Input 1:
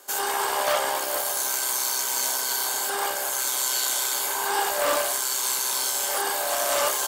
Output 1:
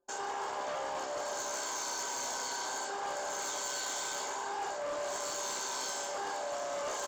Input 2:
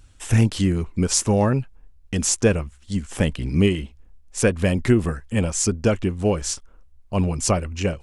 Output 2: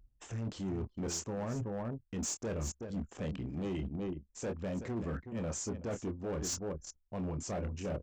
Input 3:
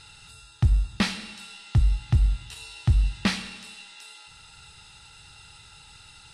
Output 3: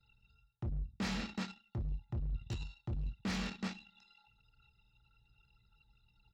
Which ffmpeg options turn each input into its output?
-filter_complex "[0:a]aresample=16000,asoftclip=type=tanh:threshold=0.112,aresample=44100,highpass=f=170:p=1,asplit=2[s0][s1];[s1]adelay=26,volume=0.355[s2];[s0][s2]amix=inputs=2:normalize=0,aecho=1:1:376:0.224,anlmdn=0.631,equalizer=f=4000:w=0.37:g=-12,areverse,acompressor=threshold=0.01:ratio=10,areverse,highshelf=f=6200:g=5,asoftclip=type=hard:threshold=0.0133,volume=2"

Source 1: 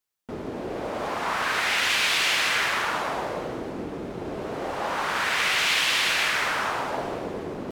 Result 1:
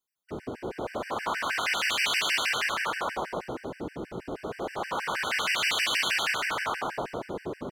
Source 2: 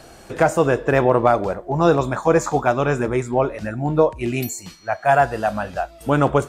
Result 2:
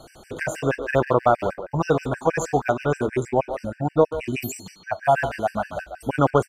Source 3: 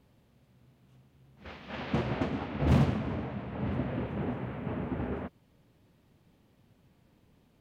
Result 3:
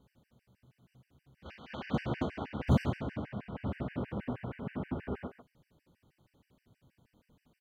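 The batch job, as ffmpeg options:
-filter_complex "[0:a]asplit=2[s0][s1];[s1]adelay=140,highpass=300,lowpass=3400,asoftclip=type=hard:threshold=0.237,volume=0.355[s2];[s0][s2]amix=inputs=2:normalize=0,afftfilt=real='re*gt(sin(2*PI*6.3*pts/sr)*(1-2*mod(floor(b*sr/1024/1500),2)),0)':imag='im*gt(sin(2*PI*6.3*pts/sr)*(1-2*mod(floor(b*sr/1024/1500),2)),0)':win_size=1024:overlap=0.75,volume=0.891"

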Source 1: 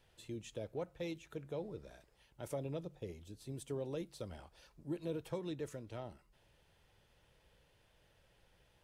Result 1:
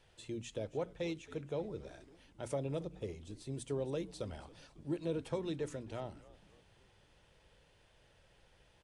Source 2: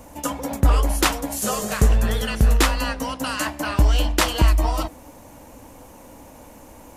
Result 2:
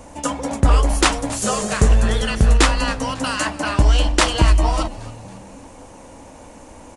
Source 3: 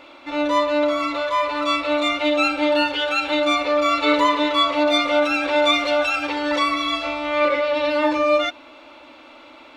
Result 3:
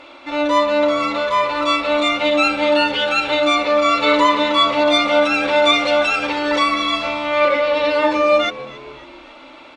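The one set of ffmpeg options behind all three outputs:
-filter_complex "[0:a]bandreject=f=60:t=h:w=6,bandreject=f=120:t=h:w=6,bandreject=f=180:t=h:w=6,bandreject=f=240:t=h:w=6,bandreject=f=300:t=h:w=6,aresample=22050,aresample=44100,asplit=5[s0][s1][s2][s3][s4];[s1]adelay=274,afreqshift=-82,volume=0.119[s5];[s2]adelay=548,afreqshift=-164,volume=0.0582[s6];[s3]adelay=822,afreqshift=-246,volume=0.0285[s7];[s4]adelay=1096,afreqshift=-328,volume=0.014[s8];[s0][s5][s6][s7][s8]amix=inputs=5:normalize=0,volume=1.5"

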